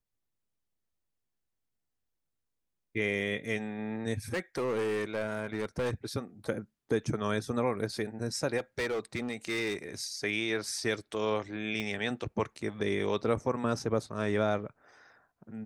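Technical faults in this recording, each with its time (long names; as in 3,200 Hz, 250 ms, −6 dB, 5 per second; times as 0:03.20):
0:04.33–0:06.06: clipping −27.5 dBFS
0:08.57–0:09.77: clipping −28 dBFS
0:11.80: click −22 dBFS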